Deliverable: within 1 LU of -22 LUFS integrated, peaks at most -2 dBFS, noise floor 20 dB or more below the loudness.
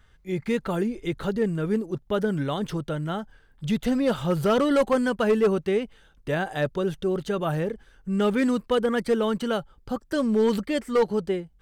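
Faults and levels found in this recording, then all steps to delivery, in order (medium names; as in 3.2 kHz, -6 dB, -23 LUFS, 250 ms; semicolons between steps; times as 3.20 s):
clipped samples 0.9%; clipping level -15.0 dBFS; loudness -25.5 LUFS; peak level -15.0 dBFS; loudness target -22.0 LUFS
-> clip repair -15 dBFS; trim +3.5 dB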